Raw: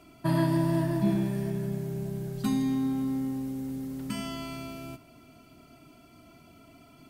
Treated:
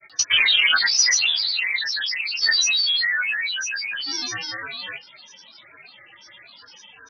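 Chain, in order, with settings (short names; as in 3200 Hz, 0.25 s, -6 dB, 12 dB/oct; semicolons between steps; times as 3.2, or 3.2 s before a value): inverted band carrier 3200 Hz; grains, grains 20/s, pitch spread up and down by 12 st; gain +8.5 dB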